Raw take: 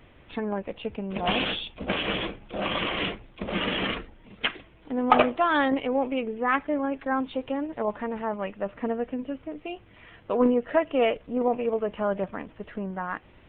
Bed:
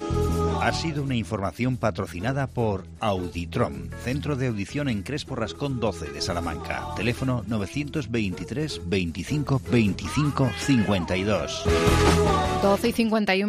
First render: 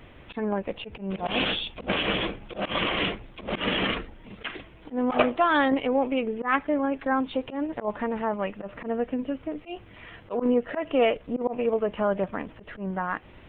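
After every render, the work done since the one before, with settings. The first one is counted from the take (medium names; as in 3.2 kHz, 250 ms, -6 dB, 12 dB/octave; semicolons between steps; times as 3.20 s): slow attack 116 ms; in parallel at -2.5 dB: compression, threshold -34 dBFS, peak gain reduction 16.5 dB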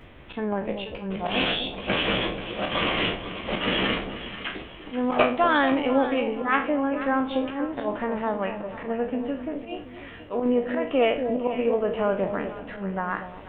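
spectral sustain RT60 0.35 s; echo whose repeats swap between lows and highs 242 ms, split 820 Hz, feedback 61%, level -8 dB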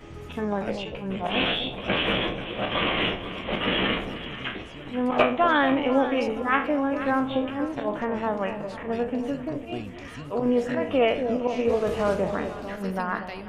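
add bed -17 dB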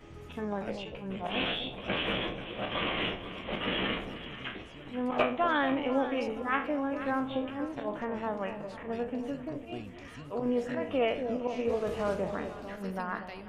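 trim -7 dB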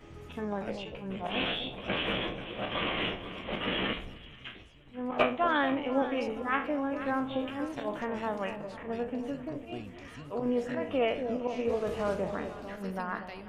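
3.93–6.02 s: three bands expanded up and down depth 70%; 7.39–8.56 s: treble shelf 3.1 kHz +9.5 dB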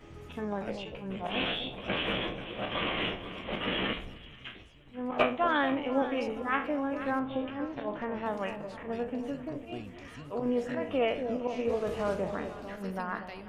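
7.19–8.26 s: distance through air 220 m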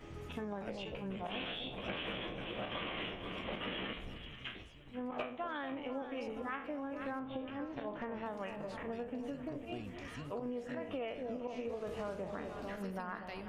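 compression 6:1, threshold -38 dBFS, peak gain reduction 16.5 dB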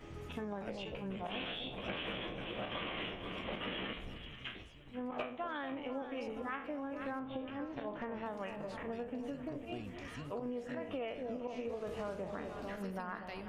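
no audible change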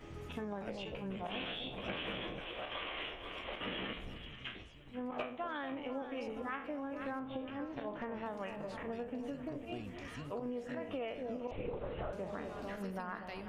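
2.39–3.61 s: peaking EQ 170 Hz -15 dB 1.5 oct; 4.31–4.73 s: low-pass 9.1 kHz; 11.51–12.13 s: LPC vocoder at 8 kHz whisper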